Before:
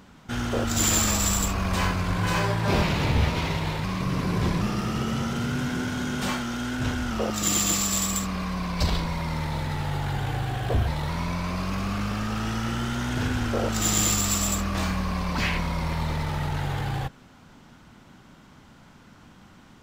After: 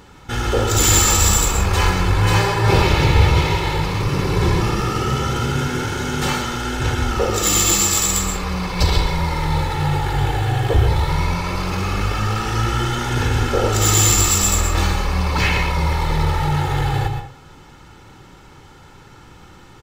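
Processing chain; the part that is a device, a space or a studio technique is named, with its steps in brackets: microphone above a desk (comb 2.3 ms, depth 62%; reverb RT60 0.45 s, pre-delay 0.111 s, DRR 5.5 dB); gain +6 dB

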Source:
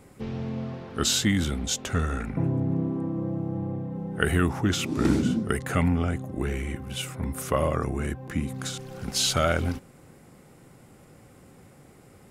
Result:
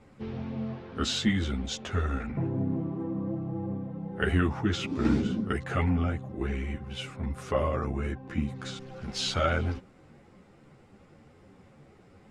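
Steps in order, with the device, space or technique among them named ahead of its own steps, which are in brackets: string-machine ensemble chorus (ensemble effect; LPF 4500 Hz 12 dB/oct)

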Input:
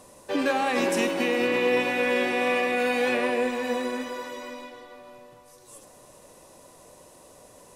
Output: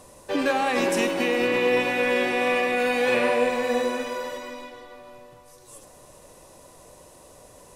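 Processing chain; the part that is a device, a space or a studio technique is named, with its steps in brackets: low shelf boost with a cut just above (low shelf 100 Hz +7.5 dB; bell 230 Hz -2.5 dB 0.77 oct); 3.03–4.38 flutter echo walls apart 8.5 m, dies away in 0.57 s; gain +1.5 dB

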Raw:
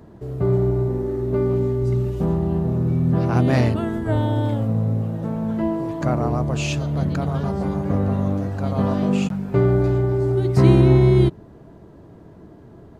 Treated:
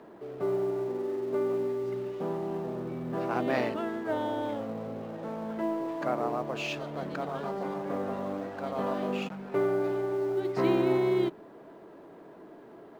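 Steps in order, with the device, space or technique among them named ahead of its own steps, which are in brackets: HPF 150 Hz 6 dB/oct; phone line with mismatched companding (BPF 340–3500 Hz; G.711 law mismatch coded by mu); gain -5 dB

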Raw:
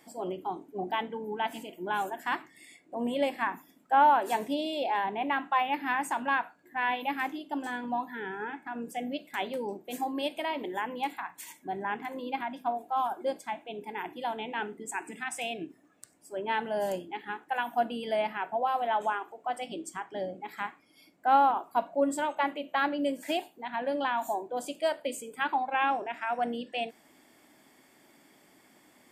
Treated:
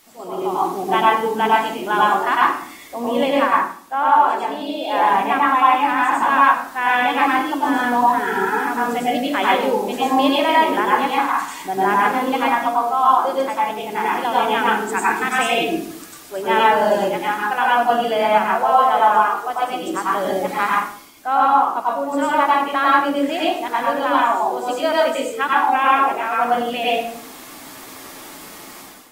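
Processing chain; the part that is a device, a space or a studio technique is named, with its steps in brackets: filmed off a television (BPF 170–6200 Hz; bell 1200 Hz +11 dB 0.4 oct; reverb RT60 0.55 s, pre-delay 90 ms, DRR -5 dB; white noise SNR 28 dB; AGC gain up to 13 dB; gain -2 dB; AAC 48 kbps 48000 Hz)

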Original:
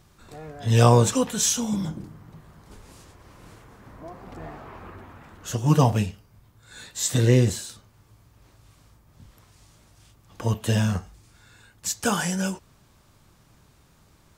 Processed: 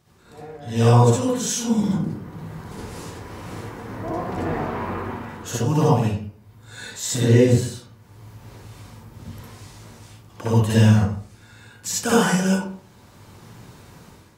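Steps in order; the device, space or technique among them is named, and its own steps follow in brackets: far laptop microphone (reverb RT60 0.50 s, pre-delay 55 ms, DRR -7 dB; HPF 160 Hz 6 dB/oct; AGC gain up to 11 dB); low shelf 390 Hz +4 dB; gain -5.5 dB

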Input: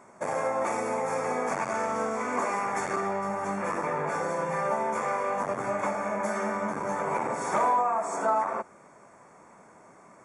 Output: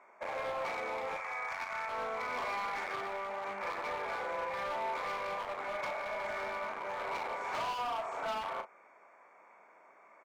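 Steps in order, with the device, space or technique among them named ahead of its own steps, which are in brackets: 1.16–1.89 HPF 1000 Hz 12 dB/oct; megaphone (BPF 560–3000 Hz; bell 2300 Hz +9.5 dB 0.27 oct; hard clip -28.5 dBFS, distortion -10 dB; doubler 36 ms -8 dB); gain -5.5 dB

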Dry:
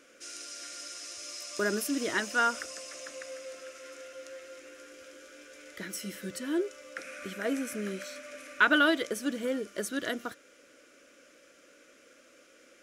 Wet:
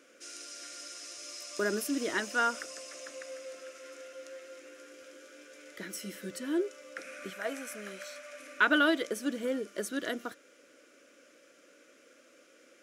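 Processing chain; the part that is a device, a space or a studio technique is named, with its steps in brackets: 7.3–8.4 resonant low shelf 510 Hz -8.5 dB, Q 1.5; filter by subtraction (in parallel: LPF 290 Hz 12 dB/oct + phase invert); on the sum: gain -2.5 dB

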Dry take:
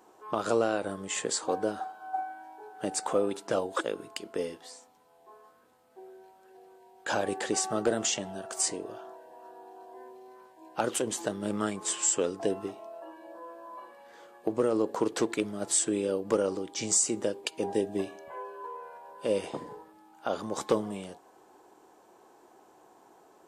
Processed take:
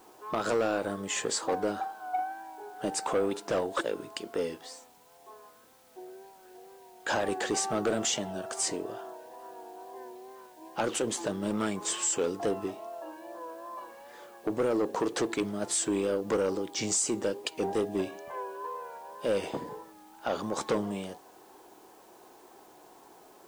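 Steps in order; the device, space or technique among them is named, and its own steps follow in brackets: compact cassette (soft clip -24.5 dBFS, distortion -11 dB; LPF 8300 Hz; wow and flutter; white noise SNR 30 dB); gain +3 dB

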